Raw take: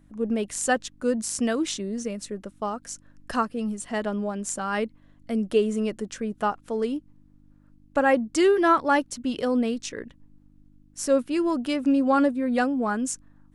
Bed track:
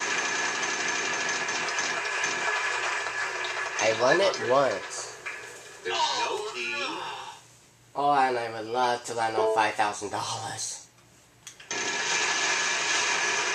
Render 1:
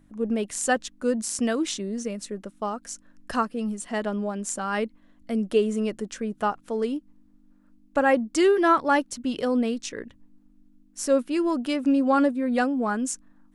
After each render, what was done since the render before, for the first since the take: de-hum 50 Hz, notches 3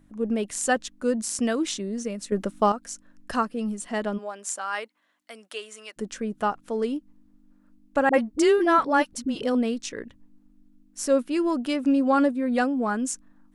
2.32–2.72 gain +9 dB; 4.17–5.96 HPF 570 Hz -> 1400 Hz; 8.09–9.55 dispersion highs, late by 47 ms, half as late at 450 Hz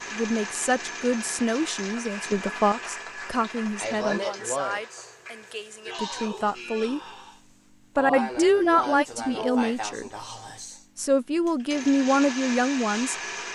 add bed track -7 dB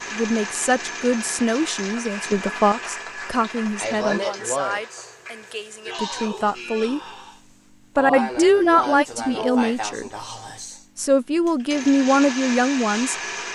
gain +4 dB

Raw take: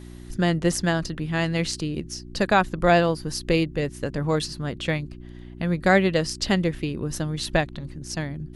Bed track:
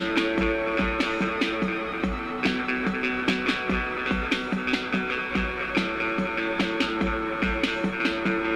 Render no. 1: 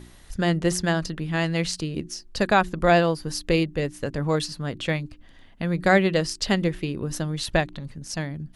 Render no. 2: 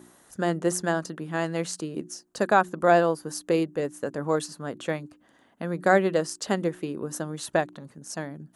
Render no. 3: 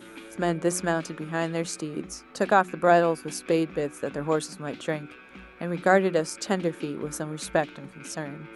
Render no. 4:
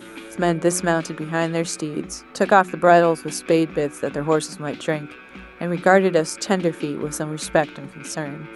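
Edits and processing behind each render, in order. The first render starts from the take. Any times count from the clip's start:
de-hum 60 Hz, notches 6
HPF 250 Hz 12 dB/oct; band shelf 3200 Hz -9.5 dB
add bed track -20 dB
gain +6 dB; limiter -1 dBFS, peak gain reduction 1.5 dB

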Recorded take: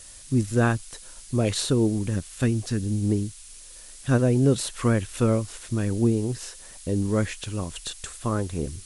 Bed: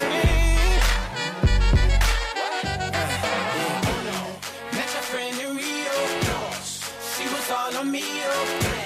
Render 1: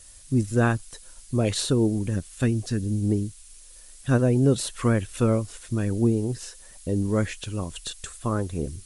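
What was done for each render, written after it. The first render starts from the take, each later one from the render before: denoiser 6 dB, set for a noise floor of -45 dBFS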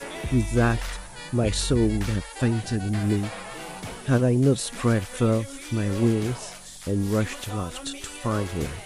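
add bed -12.5 dB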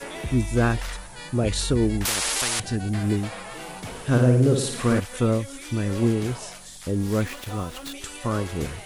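2.05–2.6 spectral compressor 10:1; 3.89–5 flutter echo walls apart 9.6 m, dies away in 0.66 s; 6.94–7.94 switching dead time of 0.069 ms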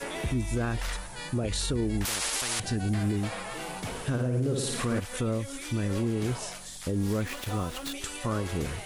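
compressor 5:1, threshold -23 dBFS, peak gain reduction 10 dB; limiter -20 dBFS, peak gain reduction 6 dB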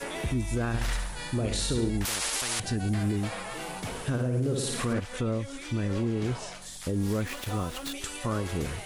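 0.67–1.9 flutter echo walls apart 11.9 m, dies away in 0.66 s; 4.93–6.62 air absorption 55 m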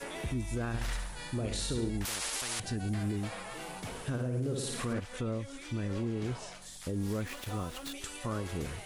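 gain -5.5 dB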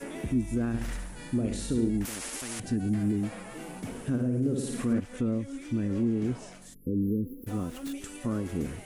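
6.74–7.47 spectral delete 520–11000 Hz; graphic EQ 250/1000/4000 Hz +11/-4/-7 dB

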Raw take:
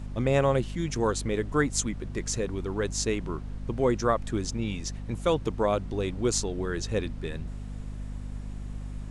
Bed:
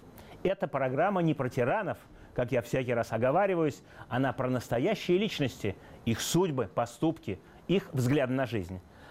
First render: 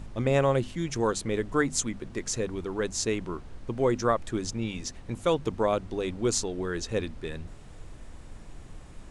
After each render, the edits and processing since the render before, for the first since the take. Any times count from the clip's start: notches 50/100/150/200/250 Hz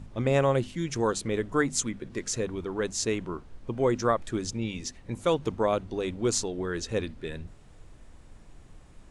noise print and reduce 6 dB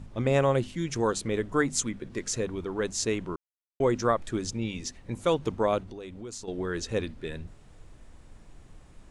3.36–3.8 mute; 5.8–6.48 compressor 4:1, threshold -39 dBFS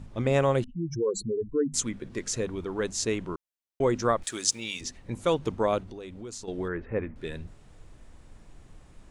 0.64–1.74 spectral contrast raised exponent 3.8; 4.23–4.81 tilt +4.5 dB/oct; 6.68–7.16 Chebyshev low-pass 2200 Hz, order 4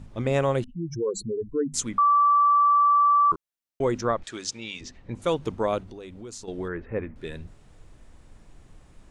1.98–3.32 bleep 1160 Hz -15.5 dBFS; 4.01–5.22 air absorption 110 m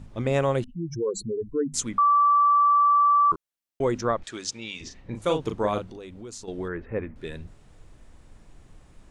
4.76–5.97 doubler 38 ms -6.5 dB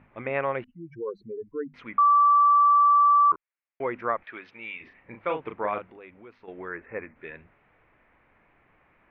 elliptic low-pass 2300 Hz, stop band 70 dB; tilt +4.5 dB/oct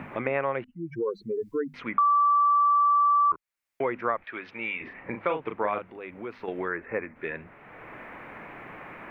three-band squash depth 70%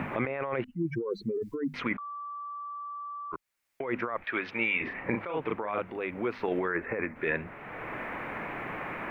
negative-ratio compressor -33 dBFS, ratio -1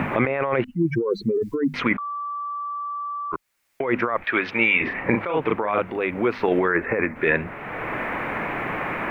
gain +9.5 dB

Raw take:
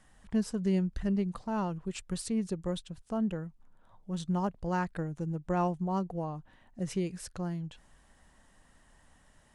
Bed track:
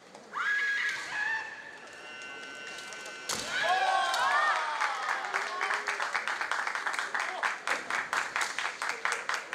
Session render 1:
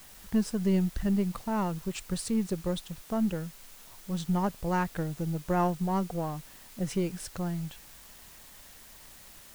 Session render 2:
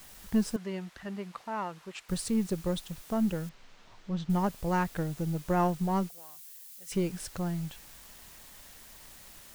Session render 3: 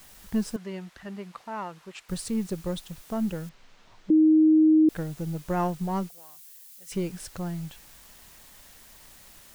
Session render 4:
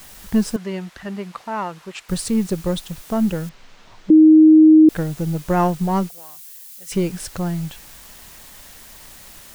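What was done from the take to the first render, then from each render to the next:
half-wave gain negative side -3 dB; in parallel at -4 dB: requantised 8-bit, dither triangular
0.56–2.09 band-pass 1500 Hz, Q 0.57; 3.49–4.3 air absorption 170 m; 6.09–6.92 differentiator
4.1–4.89 bleep 313 Hz -14.5 dBFS
gain +9 dB

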